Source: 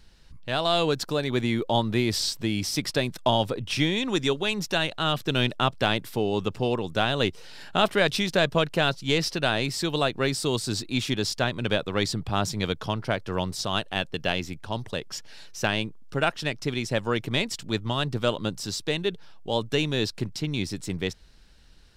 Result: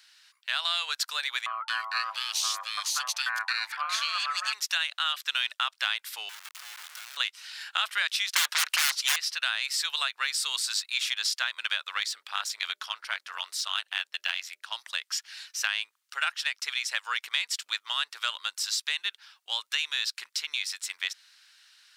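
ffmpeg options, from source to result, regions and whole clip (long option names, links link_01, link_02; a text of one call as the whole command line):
ffmpeg -i in.wav -filter_complex "[0:a]asettb=1/sr,asplit=3[link_01][link_02][link_03];[link_01]atrim=end=1.464[link_04];[link_02]atrim=start=1.46:end=4.53,asetpts=PTS-STARTPTS,afade=type=in:duration=0.004:curve=qsin,afade=type=out:start_time=3.066:duration=0.004:curve=qsin,aeval=exprs='val(0)*sin(2*PI*890*n/s)':channel_layout=same,acrossover=split=530|1700[link_05][link_06][link_07];[link_07]adelay=220[link_08];[link_05]adelay=570[link_09];[link_09][link_06][link_08]amix=inputs=3:normalize=0,atrim=end_sample=135387[link_10];[link_03]atrim=start=4.526[link_11];[link_04][link_10]acrossfade=duration=0.004:curve1=hsin:curve2=qsin[link_12];[link_12][link_11]acrossfade=duration=0.004:curve1=qsin:curve2=hsin,asettb=1/sr,asplit=3[link_13][link_14][link_15];[link_13]atrim=end=6.294[link_16];[link_14]atrim=start=6.29:end=7.17,asetpts=PTS-STARTPTS,afade=type=in:duration=0.004:curve=qsin,afade=type=out:start_time=0.876:duration=0.004:curve=qsin,acompressor=threshold=-35dB:ratio=6:attack=3.2:release=140:knee=1:detection=peak,acrusher=bits=4:dc=4:mix=0:aa=0.000001[link_17];[link_15]atrim=start=7.166[link_18];[link_16][link_17]acrossfade=duration=0.004:curve1=hsin:curve2=qsin[link_19];[link_19][link_18]acrossfade=duration=0.004:curve1=qsin:curve2=hsin,asettb=1/sr,asplit=3[link_20][link_21][link_22];[link_20]atrim=end=8.364[link_23];[link_21]atrim=start=8.36:end=9.16,asetpts=PTS-STARTPTS,afade=type=in:duration=0.004:curve=qsin,afade=type=out:start_time=0.796:duration=0.004:curve=qsin,highshelf=frequency=9300:gain=-3,aeval=exprs='(tanh(6.31*val(0)+0.45)-tanh(0.45))/6.31':channel_layout=same,aeval=exprs='0.224*sin(PI/2*6.31*val(0)/0.224)':channel_layout=same[link_24];[link_22]atrim=start=9.156[link_25];[link_23][link_24]acrossfade=duration=0.004:curve1=hsin:curve2=qsin[link_26];[link_26][link_25]acrossfade=duration=0.004:curve1=qsin:curve2=hsin,asettb=1/sr,asplit=3[link_27][link_28][link_29];[link_27]atrim=end=11.984[link_30];[link_28]atrim=start=11.98:end=14.71,asetpts=PTS-STARTPTS,afade=type=in:duration=0.004:curve=qsin,afade=type=out:start_time=2.726:duration=0.004:curve=qsin,deesser=0.6,bandreject=frequency=60:width_type=h:width=6,bandreject=frequency=120:width_type=h:width=6,bandreject=frequency=180:width_type=h:width=6,bandreject=frequency=240:width_type=h:width=6,bandreject=frequency=300:width_type=h:width=6,bandreject=frequency=360:width_type=h:width=6,tremolo=f=240:d=0.621[link_31];[link_29]atrim=start=14.706[link_32];[link_30][link_31]acrossfade=duration=0.004:curve1=hsin:curve2=qsin[link_33];[link_33][link_32]acrossfade=duration=0.004:curve1=qsin:curve2=hsin,highpass=frequency=1300:width=0.5412,highpass=frequency=1300:width=1.3066,acompressor=threshold=-31dB:ratio=3,volume=5.5dB" out.wav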